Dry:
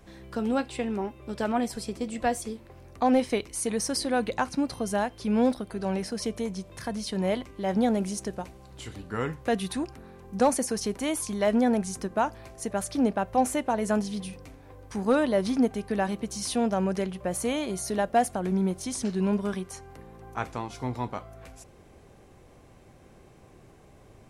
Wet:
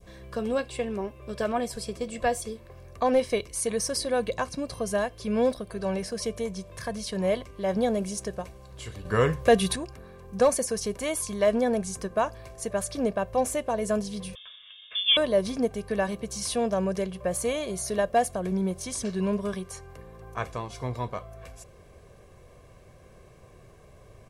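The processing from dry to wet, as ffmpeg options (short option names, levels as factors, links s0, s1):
-filter_complex "[0:a]asettb=1/sr,asplit=3[s0][s1][s2];[s0]atrim=end=9.054[s3];[s1]atrim=start=9.05:end=9.76,asetpts=PTS-STARTPTS,afade=t=in:d=0.004:c=qsin,afade=t=out:st=0.706:d=0.004:c=qsin,acontrast=88[s4];[s2]atrim=start=9.756[s5];[s3][s4]acrossfade=d=0.004:c1=hsin:c2=qsin[s6];[s6][s5]acrossfade=d=0.004:c1=qsin:c2=hsin,asettb=1/sr,asplit=3[s7][s8][s9];[s7]atrim=end=14.354[s10];[s8]atrim=start=14.35:end=15.17,asetpts=PTS-STARTPTS,afade=t=in:d=0.004:c=qsin,afade=t=out:st=0.816:d=0.004:c=qsin,lowpass=f=3100:t=q:w=0.5098,lowpass=f=3100:t=q:w=0.6013,lowpass=f=3100:t=q:w=0.9,lowpass=f=3100:t=q:w=2.563,afreqshift=-3700[s11];[s9]atrim=start=15.166[s12];[s10][s11]acrossfade=d=0.004:c1=hsin:c2=qsin[s13];[s13][s12]acrossfade=d=0.004:c1=qsin:c2=hsin,bandreject=f=840:w=22,aecho=1:1:1.8:0.54,adynamicequalizer=threshold=0.01:dfrequency=1500:dqfactor=0.79:tfrequency=1500:tqfactor=0.79:attack=5:release=100:ratio=0.375:range=2.5:mode=cutabove:tftype=bell"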